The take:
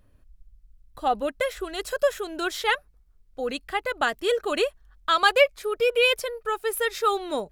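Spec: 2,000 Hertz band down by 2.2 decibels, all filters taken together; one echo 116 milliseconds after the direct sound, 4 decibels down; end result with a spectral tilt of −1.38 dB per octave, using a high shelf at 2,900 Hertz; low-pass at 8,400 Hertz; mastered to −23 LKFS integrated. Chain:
low-pass filter 8,400 Hz
parametric band 2,000 Hz −4.5 dB
high-shelf EQ 2,900 Hz +4 dB
single-tap delay 116 ms −4 dB
level +1 dB

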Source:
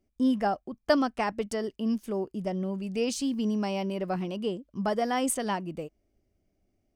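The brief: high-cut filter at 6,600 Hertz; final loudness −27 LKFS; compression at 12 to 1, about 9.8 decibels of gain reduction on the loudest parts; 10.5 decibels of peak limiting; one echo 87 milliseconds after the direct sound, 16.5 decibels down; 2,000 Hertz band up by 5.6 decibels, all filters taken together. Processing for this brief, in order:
low-pass filter 6,600 Hz
parametric band 2,000 Hz +7 dB
downward compressor 12 to 1, threshold −26 dBFS
brickwall limiter −25.5 dBFS
single-tap delay 87 ms −16.5 dB
level +7.5 dB

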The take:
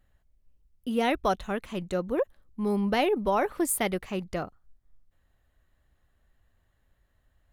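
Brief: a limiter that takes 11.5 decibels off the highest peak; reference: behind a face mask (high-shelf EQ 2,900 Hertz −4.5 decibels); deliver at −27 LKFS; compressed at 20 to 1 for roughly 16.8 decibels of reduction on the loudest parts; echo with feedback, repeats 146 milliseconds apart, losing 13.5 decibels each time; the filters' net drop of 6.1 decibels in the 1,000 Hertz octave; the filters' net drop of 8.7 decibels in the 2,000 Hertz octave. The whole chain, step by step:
parametric band 1,000 Hz −7 dB
parametric band 2,000 Hz −7 dB
downward compressor 20 to 1, threshold −40 dBFS
brickwall limiter −41.5 dBFS
high-shelf EQ 2,900 Hz −4.5 dB
repeating echo 146 ms, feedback 21%, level −13.5 dB
level +24 dB

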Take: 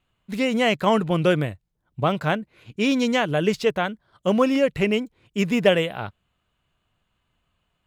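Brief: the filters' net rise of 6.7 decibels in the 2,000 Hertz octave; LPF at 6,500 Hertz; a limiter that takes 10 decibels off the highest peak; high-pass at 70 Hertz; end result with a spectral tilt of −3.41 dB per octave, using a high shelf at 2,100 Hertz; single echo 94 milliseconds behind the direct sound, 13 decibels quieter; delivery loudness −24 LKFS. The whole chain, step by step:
high-pass filter 70 Hz
low-pass filter 6,500 Hz
parametric band 2,000 Hz +5.5 dB
high-shelf EQ 2,100 Hz +5 dB
brickwall limiter −10.5 dBFS
single-tap delay 94 ms −13 dB
level −1.5 dB

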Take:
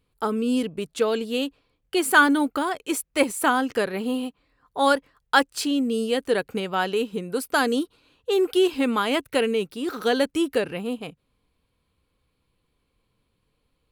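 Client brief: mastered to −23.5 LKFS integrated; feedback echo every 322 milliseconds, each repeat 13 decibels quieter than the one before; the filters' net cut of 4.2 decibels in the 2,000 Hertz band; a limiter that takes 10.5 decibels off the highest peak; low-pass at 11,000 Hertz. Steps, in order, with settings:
low-pass filter 11,000 Hz
parametric band 2,000 Hz −6.5 dB
brickwall limiter −17 dBFS
repeating echo 322 ms, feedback 22%, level −13 dB
level +4 dB

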